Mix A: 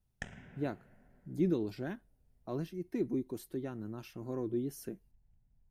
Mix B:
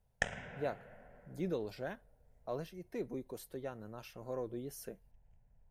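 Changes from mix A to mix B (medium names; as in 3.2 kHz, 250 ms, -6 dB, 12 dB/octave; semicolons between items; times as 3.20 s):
background +9.0 dB; master: add resonant low shelf 410 Hz -6 dB, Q 3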